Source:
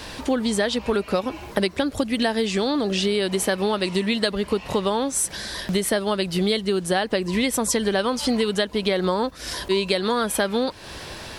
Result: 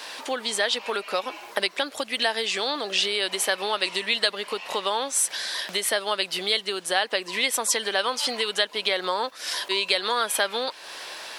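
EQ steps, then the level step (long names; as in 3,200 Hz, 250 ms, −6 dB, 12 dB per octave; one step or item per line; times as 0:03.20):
dynamic equaliser 3,000 Hz, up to +4 dB, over −39 dBFS, Q 0.95
high-pass filter 640 Hz 12 dB per octave
0.0 dB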